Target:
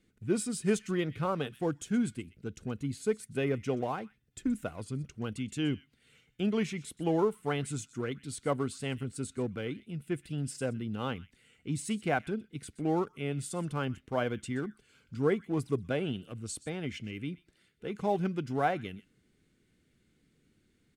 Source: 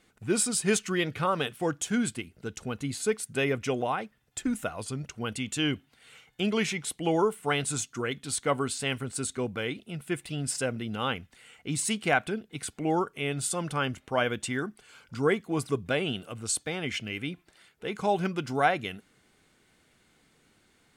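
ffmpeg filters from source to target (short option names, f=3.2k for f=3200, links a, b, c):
-filter_complex "[0:a]tiltshelf=f=1.1k:g=5.5,acrossover=split=490|1400[a][b][c];[b]aeval=exprs='sgn(val(0))*max(abs(val(0))-0.00631,0)':c=same[d];[c]aecho=1:1:125:0.133[e];[a][d][e]amix=inputs=3:normalize=0,volume=-6dB"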